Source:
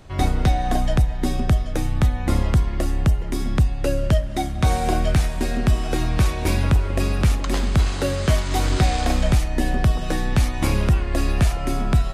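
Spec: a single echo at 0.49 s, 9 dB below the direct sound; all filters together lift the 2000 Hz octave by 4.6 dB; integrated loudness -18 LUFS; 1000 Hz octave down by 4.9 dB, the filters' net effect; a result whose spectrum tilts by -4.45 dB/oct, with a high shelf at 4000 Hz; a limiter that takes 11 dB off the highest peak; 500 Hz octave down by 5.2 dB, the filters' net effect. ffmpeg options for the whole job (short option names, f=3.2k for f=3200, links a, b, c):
-af "equalizer=f=500:t=o:g=-5.5,equalizer=f=1k:t=o:g=-6.5,equalizer=f=2k:t=o:g=6,highshelf=f=4k:g=7.5,alimiter=limit=-17dB:level=0:latency=1,aecho=1:1:490:0.355,volume=8.5dB"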